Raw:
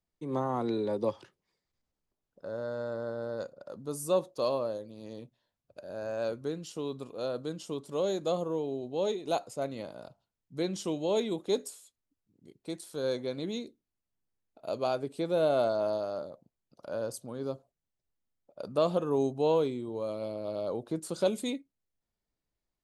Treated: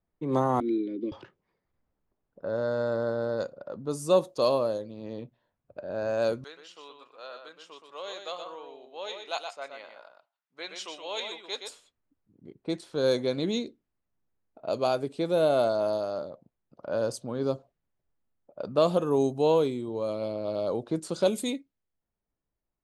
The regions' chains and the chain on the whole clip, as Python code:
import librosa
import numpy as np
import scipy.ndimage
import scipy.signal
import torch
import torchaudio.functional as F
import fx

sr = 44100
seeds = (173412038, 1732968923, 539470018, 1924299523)

y = fx.chain(x, sr, fx.vowel_filter(vowel='i'),
    fx.peak_eq(hz=340.0, db=13.0, octaves=0.5), at=(0.6, 1.12))
y = fx.chain(y, sr, fx.highpass(hz=1400.0, slope=12),
    fx.echo_single(ms=122, db=-6.0), at=(6.44, 11.69))
y = fx.high_shelf(y, sr, hz=7000.0, db=5.5)
y = fx.env_lowpass(y, sr, base_hz=1600.0, full_db=-27.0)
y = fx.rider(y, sr, range_db=4, speed_s=2.0)
y = y * 10.0 ** (4.0 / 20.0)